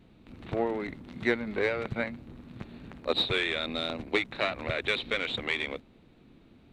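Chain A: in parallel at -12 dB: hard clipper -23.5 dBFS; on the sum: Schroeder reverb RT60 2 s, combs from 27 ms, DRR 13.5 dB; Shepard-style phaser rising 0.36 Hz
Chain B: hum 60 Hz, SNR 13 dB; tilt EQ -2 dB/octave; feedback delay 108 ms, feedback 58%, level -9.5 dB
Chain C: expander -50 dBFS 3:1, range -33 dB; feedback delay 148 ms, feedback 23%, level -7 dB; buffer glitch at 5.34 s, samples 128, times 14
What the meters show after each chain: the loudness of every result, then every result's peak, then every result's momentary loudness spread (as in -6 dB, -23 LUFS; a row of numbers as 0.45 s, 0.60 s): -30.5 LUFS, -30.0 LUFS, -30.0 LUFS; -12.5 dBFS, -10.5 dBFS, -10.5 dBFS; 15 LU, 13 LU, 17 LU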